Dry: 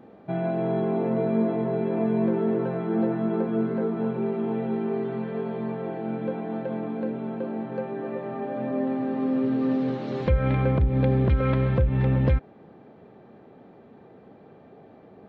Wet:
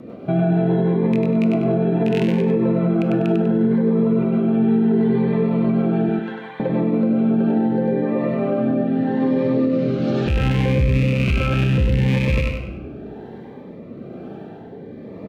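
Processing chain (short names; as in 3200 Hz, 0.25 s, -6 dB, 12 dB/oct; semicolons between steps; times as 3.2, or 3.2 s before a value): rattling part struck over -22 dBFS, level -18 dBFS; 6.09–6.6 HPF 1000 Hz 24 dB/oct; in parallel at -2 dB: compressor, threshold -34 dBFS, peak gain reduction 17 dB; on the sum: rotary speaker horn 6.3 Hz, later 1 Hz, at 6.75; feedback echo 98 ms, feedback 31%, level -3.5 dB; reverb RT60 1.2 s, pre-delay 20 ms, DRR 10 dB; maximiser +18.5 dB; cascading phaser rising 0.72 Hz; gain -9 dB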